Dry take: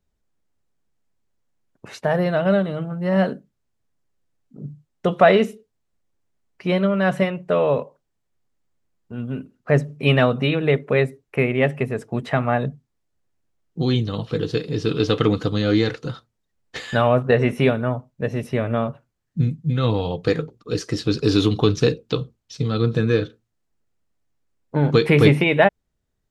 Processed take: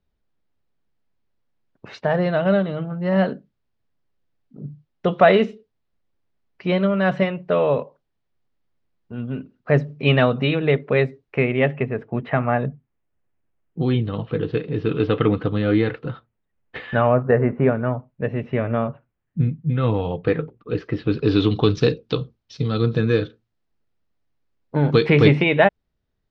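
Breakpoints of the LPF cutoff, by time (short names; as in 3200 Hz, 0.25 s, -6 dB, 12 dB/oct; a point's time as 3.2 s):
LPF 24 dB/oct
11.46 s 4700 Hz
11.92 s 2800 Hz
16.86 s 2800 Hz
17.58 s 1500 Hz
17.89 s 2800 Hz
21.07 s 2800 Hz
21.74 s 5000 Hz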